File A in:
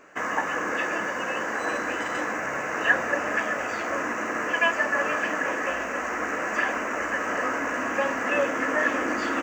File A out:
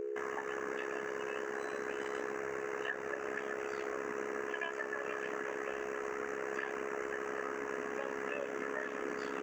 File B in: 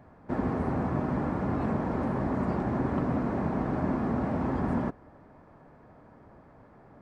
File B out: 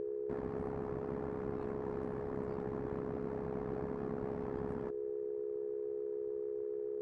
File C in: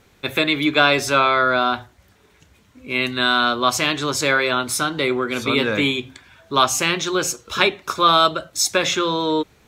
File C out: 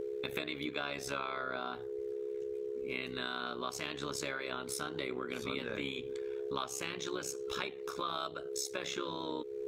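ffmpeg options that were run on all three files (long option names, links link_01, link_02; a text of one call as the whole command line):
ffmpeg -i in.wav -af "aeval=exprs='val(0)+0.0562*sin(2*PI*420*n/s)':channel_layout=same,acompressor=threshold=-25dB:ratio=6,tremolo=f=67:d=0.824,volume=-7dB" out.wav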